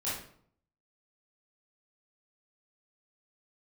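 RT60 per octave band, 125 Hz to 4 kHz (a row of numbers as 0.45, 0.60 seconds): 0.80, 0.70, 0.65, 0.55, 0.50, 0.40 seconds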